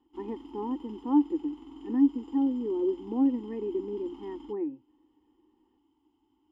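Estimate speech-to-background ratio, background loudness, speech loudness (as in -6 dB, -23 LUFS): 18.0 dB, -48.0 LUFS, -30.0 LUFS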